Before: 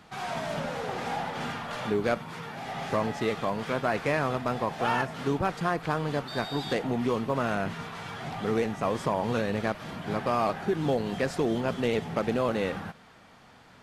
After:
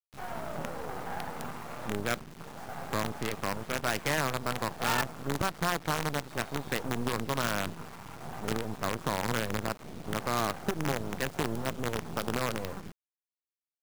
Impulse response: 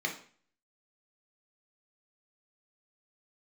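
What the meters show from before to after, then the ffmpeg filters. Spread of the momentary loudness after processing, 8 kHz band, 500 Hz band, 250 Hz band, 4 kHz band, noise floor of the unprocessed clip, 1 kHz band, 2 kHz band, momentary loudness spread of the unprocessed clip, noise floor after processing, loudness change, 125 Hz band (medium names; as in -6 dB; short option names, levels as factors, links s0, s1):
11 LU, +8.0 dB, -7.0 dB, -5.5 dB, +1.0 dB, -54 dBFS, -3.5 dB, -1.0 dB, 7 LU, under -85 dBFS, -3.5 dB, -2.5 dB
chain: -filter_complex "[0:a]afwtdn=0.02,acrossover=split=230|960|2600[s0][s1][s2][s3];[s1]alimiter=level_in=1.78:limit=0.0631:level=0:latency=1:release=31,volume=0.562[s4];[s0][s4][s2][s3]amix=inputs=4:normalize=0,acrusher=bits=5:dc=4:mix=0:aa=0.000001"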